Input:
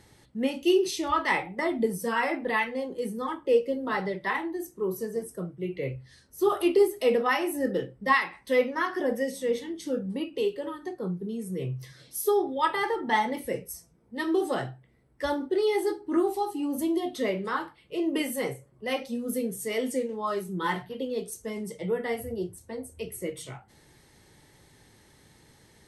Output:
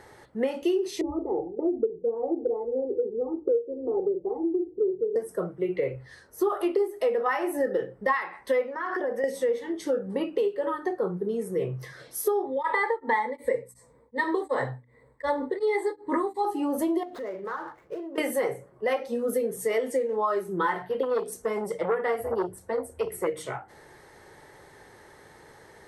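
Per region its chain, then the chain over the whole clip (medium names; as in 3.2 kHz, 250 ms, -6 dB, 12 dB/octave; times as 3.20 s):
1.01–5.16 s: inverse Chebyshev low-pass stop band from 1.6 kHz, stop band 60 dB + comb 2.5 ms, depth 76%
8.73–9.24 s: compression 10:1, threshold -34 dBFS + treble shelf 9.6 kHz -10 dB
12.45–16.45 s: rippled EQ curve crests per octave 1, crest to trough 13 dB + tremolo of two beating tones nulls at 2.7 Hz
17.03–18.18 s: median filter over 15 samples + compression 16:1, threshold -40 dBFS
21.03–23.27 s: band-stop 6.4 kHz, Q 18 + transformer saturation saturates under 850 Hz
whole clip: high-order bell 840 Hz +11.5 dB 2.7 oct; de-hum 61.62 Hz, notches 5; compression 6:1, threshold -23 dBFS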